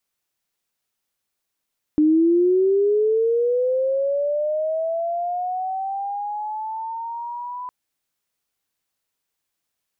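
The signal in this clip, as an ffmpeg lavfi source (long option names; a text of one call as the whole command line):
ffmpeg -f lavfi -i "aevalsrc='pow(10,(-12.5-16*t/5.71)/20)*sin(2*PI*(300*t+700*t*t/(2*5.71)))':duration=5.71:sample_rate=44100" out.wav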